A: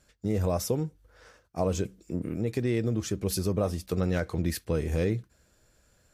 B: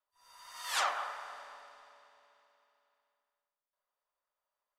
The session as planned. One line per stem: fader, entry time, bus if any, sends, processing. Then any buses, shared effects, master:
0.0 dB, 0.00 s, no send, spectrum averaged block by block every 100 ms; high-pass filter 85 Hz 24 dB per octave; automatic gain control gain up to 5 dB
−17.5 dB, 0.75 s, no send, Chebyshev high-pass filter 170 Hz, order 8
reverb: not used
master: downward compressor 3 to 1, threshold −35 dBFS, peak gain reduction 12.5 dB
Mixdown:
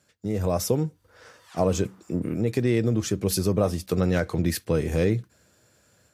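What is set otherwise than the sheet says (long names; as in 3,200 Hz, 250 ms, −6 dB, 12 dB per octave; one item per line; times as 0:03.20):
stem A: missing spectrum averaged block by block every 100 ms
master: missing downward compressor 3 to 1, threshold −35 dBFS, peak gain reduction 12.5 dB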